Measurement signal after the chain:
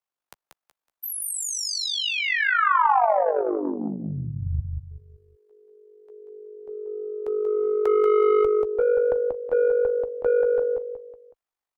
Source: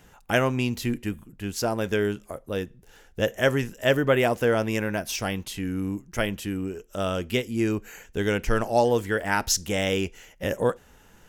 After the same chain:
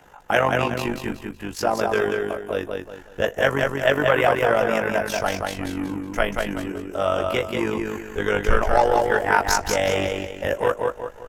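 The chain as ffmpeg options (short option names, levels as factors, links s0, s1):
-filter_complex "[0:a]asplit=2[s0][s1];[s1]adelay=14,volume=0.422[s2];[s0][s2]amix=inputs=2:normalize=0,asubboost=boost=3.5:cutoff=80,aecho=1:1:186|372|558|744:0.596|0.203|0.0689|0.0234,acrossover=split=140|1200|4200[s3][s4][s5][s6];[s4]asoftclip=type=tanh:threshold=0.0841[s7];[s3][s7][s5][s6]amix=inputs=4:normalize=0,equalizer=f=860:w=0.49:g=13,tremolo=f=49:d=0.667,volume=0.891"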